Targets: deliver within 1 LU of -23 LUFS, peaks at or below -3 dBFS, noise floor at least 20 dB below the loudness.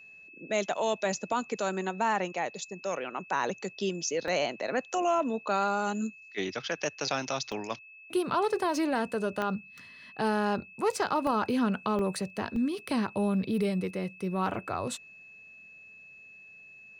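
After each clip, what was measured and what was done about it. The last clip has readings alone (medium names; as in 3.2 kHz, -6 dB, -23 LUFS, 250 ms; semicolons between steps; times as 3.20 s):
dropouts 6; longest dropout 2.2 ms; steady tone 2.6 kHz; tone level -49 dBFS; loudness -31.0 LUFS; peak level -16.0 dBFS; loudness target -23.0 LUFS
-> interpolate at 4.28/7.52/9.42/11.27/11.99/12.56 s, 2.2 ms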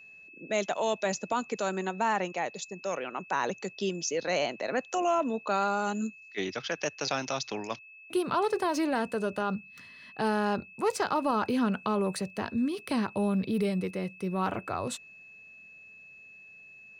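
dropouts 0; steady tone 2.6 kHz; tone level -49 dBFS
-> band-stop 2.6 kHz, Q 30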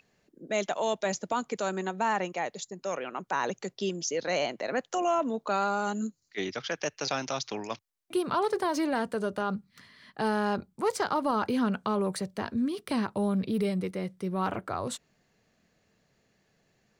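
steady tone not found; loudness -31.0 LUFS; peak level -15.5 dBFS; loudness target -23.0 LUFS
-> trim +8 dB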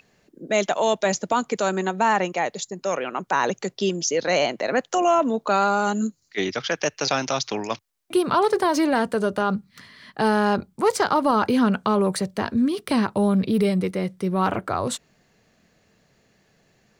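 loudness -23.0 LUFS; peak level -7.5 dBFS; noise floor -64 dBFS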